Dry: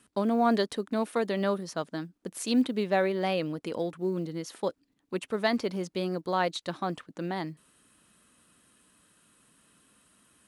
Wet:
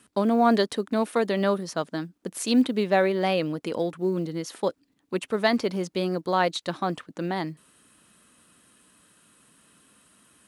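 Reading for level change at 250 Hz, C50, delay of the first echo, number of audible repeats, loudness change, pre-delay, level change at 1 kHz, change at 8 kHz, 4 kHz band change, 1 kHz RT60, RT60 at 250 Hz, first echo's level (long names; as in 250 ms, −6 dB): +4.0 dB, no reverb audible, no echo audible, no echo audible, +4.5 dB, no reverb audible, +4.5 dB, +4.5 dB, +4.5 dB, no reverb audible, no reverb audible, no echo audible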